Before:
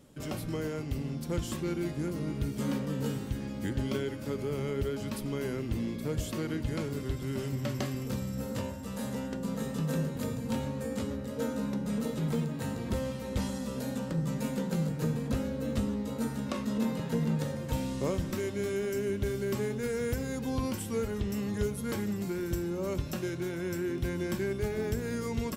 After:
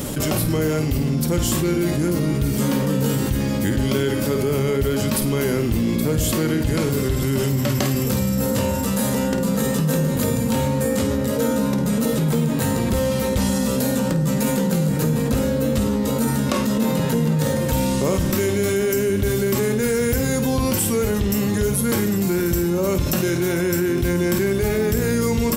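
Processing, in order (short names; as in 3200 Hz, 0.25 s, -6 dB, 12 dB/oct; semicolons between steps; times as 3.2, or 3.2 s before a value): high shelf 9000 Hz +11.5 dB; flutter echo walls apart 8.8 m, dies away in 0.3 s; fast leveller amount 70%; gain +8 dB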